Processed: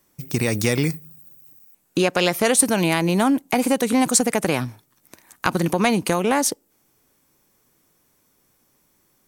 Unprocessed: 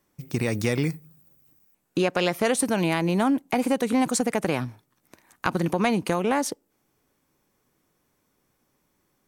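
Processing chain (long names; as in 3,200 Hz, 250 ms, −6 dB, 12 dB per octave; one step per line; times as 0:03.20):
high-shelf EQ 4,500 Hz +8.5 dB
level +3.5 dB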